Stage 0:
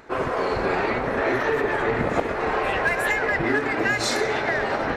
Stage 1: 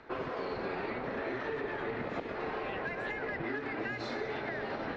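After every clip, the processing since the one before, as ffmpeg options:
ffmpeg -i in.wav -filter_complex "[0:a]lowpass=frequency=4700:width=0.5412,lowpass=frequency=4700:width=1.3066,acrossover=split=130|380|2800[link_01][link_02][link_03][link_04];[link_01]acompressor=threshold=-50dB:ratio=4[link_05];[link_02]acompressor=threshold=-34dB:ratio=4[link_06];[link_03]acompressor=threshold=-33dB:ratio=4[link_07];[link_04]acompressor=threshold=-46dB:ratio=4[link_08];[link_05][link_06][link_07][link_08]amix=inputs=4:normalize=0,volume=-6dB" out.wav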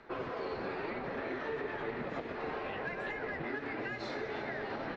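ffmpeg -i in.wav -af "flanger=delay=5:depth=8.4:regen=-45:speed=1:shape=sinusoidal,aecho=1:1:338:0.188,volume=2dB" out.wav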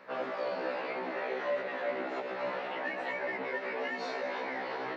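ffmpeg -i in.wav -af "afreqshift=130,afftfilt=real='re*1.73*eq(mod(b,3),0)':imag='im*1.73*eq(mod(b,3),0)':win_size=2048:overlap=0.75,volume=5dB" out.wav

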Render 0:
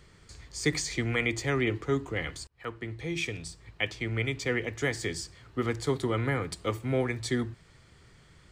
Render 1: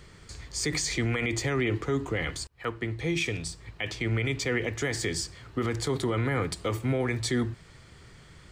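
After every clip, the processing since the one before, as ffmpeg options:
ffmpeg -i in.wav -af "alimiter=level_in=0.5dB:limit=-24dB:level=0:latency=1:release=39,volume=-0.5dB,volume=5.5dB" out.wav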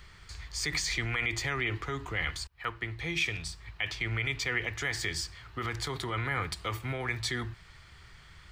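ffmpeg -i in.wav -af "equalizer=frequency=125:width_type=o:width=1:gain=-6,equalizer=frequency=250:width_type=o:width=1:gain=-12,equalizer=frequency=500:width_type=o:width=1:gain=-10,equalizer=frequency=8000:width_type=o:width=1:gain=-8,volume=2dB" out.wav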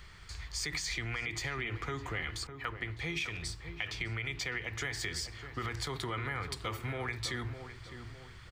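ffmpeg -i in.wav -filter_complex "[0:a]acompressor=threshold=-33dB:ratio=6,asplit=2[link_01][link_02];[link_02]adelay=607,lowpass=frequency=1200:poles=1,volume=-8.5dB,asplit=2[link_03][link_04];[link_04]adelay=607,lowpass=frequency=1200:poles=1,volume=0.46,asplit=2[link_05][link_06];[link_06]adelay=607,lowpass=frequency=1200:poles=1,volume=0.46,asplit=2[link_07][link_08];[link_08]adelay=607,lowpass=frequency=1200:poles=1,volume=0.46,asplit=2[link_09][link_10];[link_10]adelay=607,lowpass=frequency=1200:poles=1,volume=0.46[link_11];[link_01][link_03][link_05][link_07][link_09][link_11]amix=inputs=6:normalize=0" out.wav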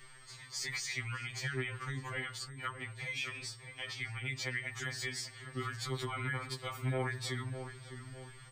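ffmpeg -i in.wav -af "aeval=exprs='val(0)+0.000501*sin(2*PI*8400*n/s)':channel_layout=same,afftfilt=real='re*2.45*eq(mod(b,6),0)':imag='im*2.45*eq(mod(b,6),0)':win_size=2048:overlap=0.75" out.wav

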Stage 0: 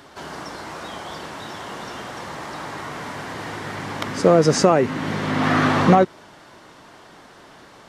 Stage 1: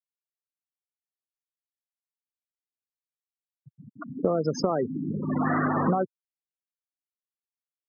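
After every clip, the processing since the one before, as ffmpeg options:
ffmpeg -i in.wav -af "afftfilt=real='re*gte(hypot(re,im),0.2)':imag='im*gte(hypot(re,im),0.2)':win_size=1024:overlap=0.75,highpass=frequency=120:width=0.5412,highpass=frequency=120:width=1.3066,acompressor=threshold=-19dB:ratio=6,volume=-2dB" out.wav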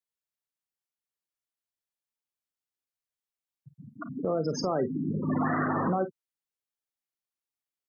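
ffmpeg -i in.wav -filter_complex "[0:a]alimiter=limit=-19dB:level=0:latency=1:release=44,asplit=2[link_01][link_02];[link_02]aecho=0:1:37|50:0.168|0.211[link_03];[link_01][link_03]amix=inputs=2:normalize=0" out.wav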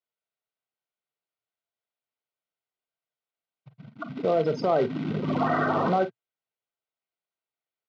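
ffmpeg -i in.wav -af "acrusher=bits=3:mode=log:mix=0:aa=0.000001,asuperstop=centerf=1700:order=12:qfactor=7.2,highpass=120,equalizer=frequency=120:width_type=q:width=4:gain=5,equalizer=frequency=280:width_type=q:width=4:gain=-3,equalizer=frequency=440:width_type=q:width=4:gain=5,equalizer=frequency=670:width_type=q:width=4:gain=8,equalizer=frequency=1600:width_type=q:width=4:gain=6,lowpass=frequency=4000:width=0.5412,lowpass=frequency=4000:width=1.3066,volume=1.5dB" out.wav

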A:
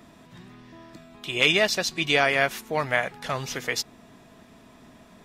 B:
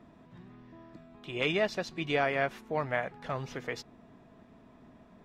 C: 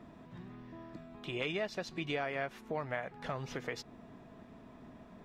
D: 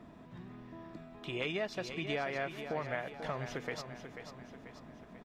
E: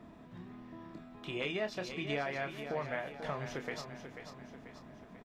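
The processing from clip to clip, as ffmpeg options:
ffmpeg -i in.wav -af "lowpass=frequency=1100:poles=1,volume=-4dB" out.wav
ffmpeg -i in.wav -af "acompressor=threshold=-40dB:ratio=2.5,volume=2.5dB" out.wav
ffmpeg -i in.wav -af "aecho=1:1:489|978|1467|1956|2445:0.355|0.17|0.0817|0.0392|0.0188" out.wav
ffmpeg -i in.wav -filter_complex "[0:a]asplit=2[link_01][link_02];[link_02]adelay=28,volume=-8dB[link_03];[link_01][link_03]amix=inputs=2:normalize=0,volume=-1dB" out.wav

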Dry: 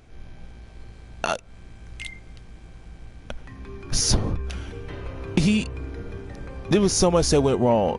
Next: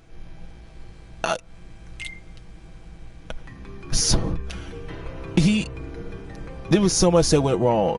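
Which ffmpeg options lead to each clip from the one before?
ffmpeg -i in.wav -af "aecho=1:1:6.1:0.49" out.wav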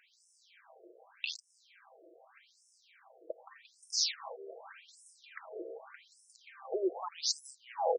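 ffmpeg -i in.wav -af "acompressor=threshold=-21dB:ratio=6,acrusher=samples=4:mix=1:aa=0.000001,afftfilt=real='re*between(b*sr/1024,460*pow(7400/460,0.5+0.5*sin(2*PI*0.84*pts/sr))/1.41,460*pow(7400/460,0.5+0.5*sin(2*PI*0.84*pts/sr))*1.41)':imag='im*between(b*sr/1024,460*pow(7400/460,0.5+0.5*sin(2*PI*0.84*pts/sr))/1.41,460*pow(7400/460,0.5+0.5*sin(2*PI*0.84*pts/sr))*1.41)':win_size=1024:overlap=0.75" out.wav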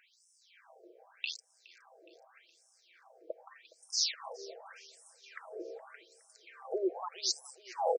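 ffmpeg -i in.wav -af "aecho=1:1:417|834|1251|1668:0.0794|0.0413|0.0215|0.0112" out.wav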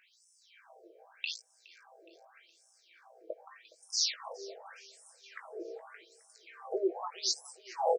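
ffmpeg -i in.wav -filter_complex "[0:a]asplit=2[link_01][link_02];[link_02]adelay=18,volume=-6dB[link_03];[link_01][link_03]amix=inputs=2:normalize=0" out.wav

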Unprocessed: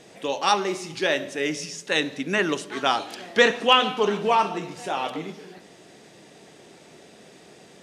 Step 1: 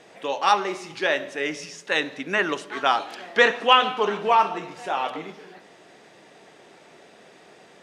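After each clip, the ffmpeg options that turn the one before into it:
ffmpeg -i in.wav -af "equalizer=frequency=1200:width=0.35:gain=11,volume=-8dB" out.wav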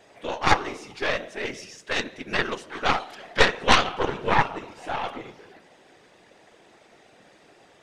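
ffmpeg -i in.wav -af "afftfilt=real='hypot(re,im)*cos(2*PI*random(0))':imag='hypot(re,im)*sin(2*PI*random(1))':win_size=512:overlap=0.75,aeval=exprs='0.422*(cos(1*acos(clip(val(0)/0.422,-1,1)))-cos(1*PI/2))+0.188*(cos(4*acos(clip(val(0)/0.422,-1,1)))-cos(4*PI/2))':channel_layout=same,volume=2dB" out.wav

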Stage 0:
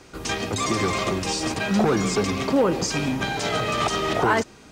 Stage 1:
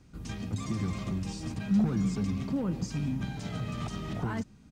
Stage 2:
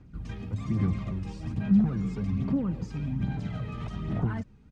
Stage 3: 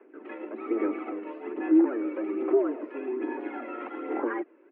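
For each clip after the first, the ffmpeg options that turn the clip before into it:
ffmpeg -i in.wav -af "firequalizer=gain_entry='entry(200,0);entry(380,-17);entry(13000,-14)':delay=0.05:min_phase=1,volume=-2dB" out.wav
ffmpeg -i in.wav -af "aphaser=in_gain=1:out_gain=1:delay=2.4:decay=0.44:speed=1.2:type=sinusoidal,bass=frequency=250:gain=4,treble=frequency=4000:gain=-13,volume=-2.5dB" out.wav
ffmpeg -i in.wav -af "highpass=frequency=220:width_type=q:width=0.5412,highpass=frequency=220:width_type=q:width=1.307,lowpass=frequency=2300:width_type=q:width=0.5176,lowpass=frequency=2300:width_type=q:width=0.7071,lowpass=frequency=2300:width_type=q:width=1.932,afreqshift=120,volume=6dB" out.wav

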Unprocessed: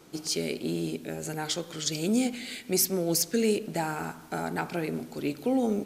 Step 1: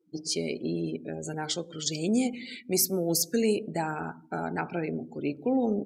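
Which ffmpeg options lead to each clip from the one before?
ffmpeg -i in.wav -af "afftdn=noise_reduction=35:noise_floor=-40" out.wav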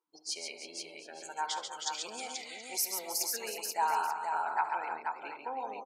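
ffmpeg -i in.wav -filter_complex "[0:a]highpass=frequency=970:width_type=q:width=7,asplit=2[link_01][link_02];[link_02]aecho=0:1:68|138|317|482|726|884:0.168|0.531|0.266|0.562|0.126|0.141[link_03];[link_01][link_03]amix=inputs=2:normalize=0,volume=-6.5dB" out.wav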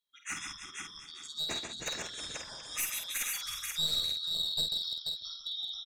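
ffmpeg -i in.wav -filter_complex "[0:a]afftfilt=real='real(if(lt(b,272),68*(eq(floor(b/68),0)*2+eq(floor(b/68),1)*3+eq(floor(b/68),2)*0+eq(floor(b/68),3)*1)+mod(b,68),b),0)':imag='imag(if(lt(b,272),68*(eq(floor(b/68),0)*2+eq(floor(b/68),1)*3+eq(floor(b/68),2)*0+eq(floor(b/68),3)*1)+mod(b,68),b),0)':win_size=2048:overlap=0.75,aeval=exprs='clip(val(0),-1,0.0316)':channel_layout=same,asplit=2[link_01][link_02];[link_02]adelay=49,volume=-6dB[link_03];[link_01][link_03]amix=inputs=2:normalize=0,volume=-1dB" out.wav

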